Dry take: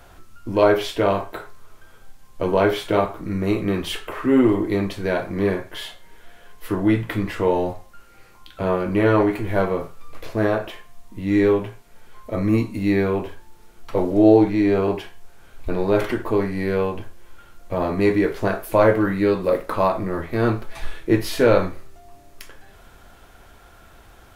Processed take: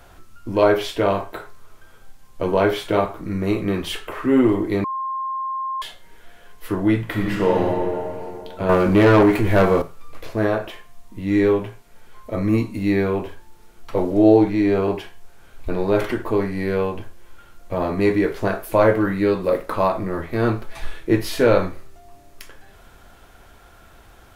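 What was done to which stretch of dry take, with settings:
4.84–5.82 bleep 1060 Hz -23 dBFS
7.03–7.67 reverb throw, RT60 2.7 s, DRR 0 dB
8.69–9.82 sample leveller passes 2

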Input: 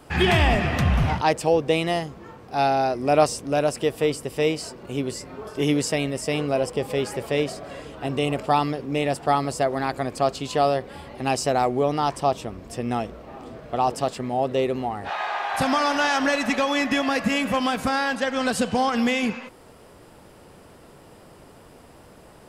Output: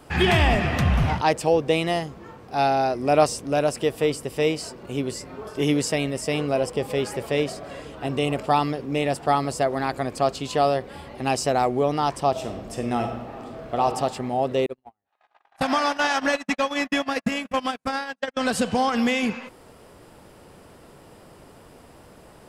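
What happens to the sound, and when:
12.3–13.84 reverb throw, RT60 1.2 s, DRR 4 dB
14.66–18.37 gate -23 dBFS, range -52 dB

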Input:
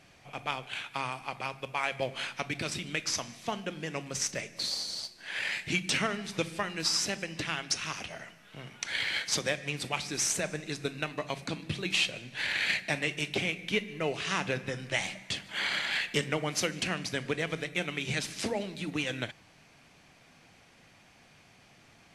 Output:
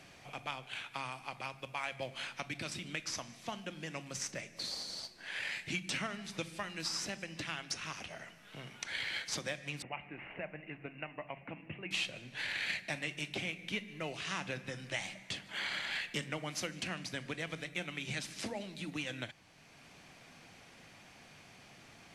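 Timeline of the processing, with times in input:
9.82–11.91 rippled Chebyshev low-pass 2900 Hz, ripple 6 dB
whole clip: dynamic EQ 430 Hz, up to -7 dB, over -53 dBFS, Q 5.4; three-band squash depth 40%; gain -7 dB

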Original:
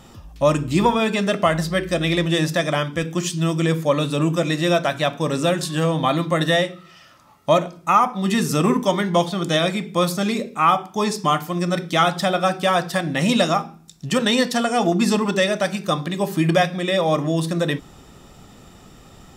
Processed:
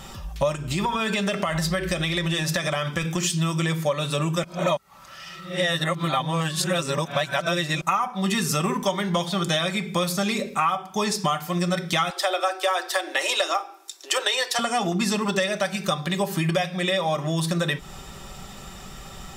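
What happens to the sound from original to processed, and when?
0.55–3.3 compressor, threshold -21 dBFS
4.44–7.81 reverse
12.1–14.59 steep high-pass 300 Hz 96 dB/oct
whole clip: bell 280 Hz -9 dB 1.9 oct; comb 5.2 ms, depth 47%; compressor 5:1, threshold -29 dBFS; gain +7.5 dB

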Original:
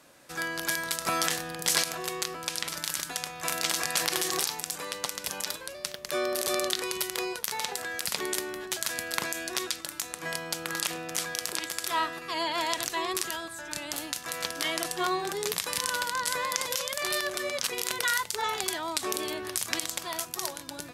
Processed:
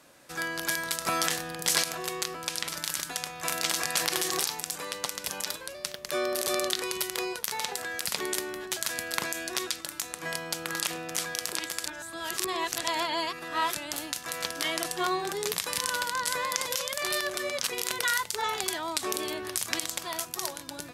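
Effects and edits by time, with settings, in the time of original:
11.86–13.75 reverse

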